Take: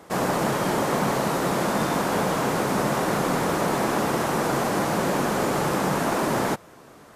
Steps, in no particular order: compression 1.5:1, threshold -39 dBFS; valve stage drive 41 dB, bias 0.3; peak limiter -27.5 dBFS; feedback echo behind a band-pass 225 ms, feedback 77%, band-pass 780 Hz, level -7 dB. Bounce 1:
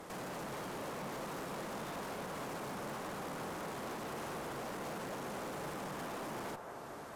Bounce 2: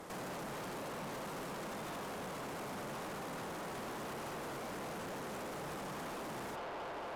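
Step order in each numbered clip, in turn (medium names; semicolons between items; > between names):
compression > peak limiter > valve stage > feedback echo behind a band-pass; feedback echo behind a band-pass > peak limiter > valve stage > compression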